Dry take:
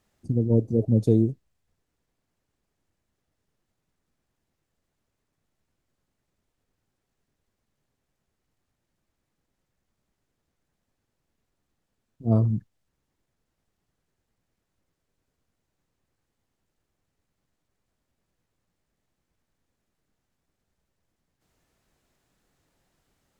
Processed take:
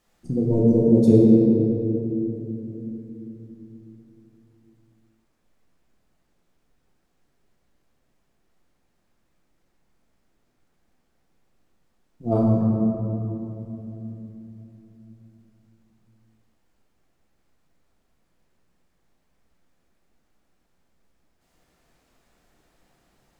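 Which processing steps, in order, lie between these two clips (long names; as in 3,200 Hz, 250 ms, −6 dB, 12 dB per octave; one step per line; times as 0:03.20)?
parametric band 110 Hz −6.5 dB 1.3 octaves
rectangular room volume 180 cubic metres, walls hard, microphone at 0.81 metres
level +2 dB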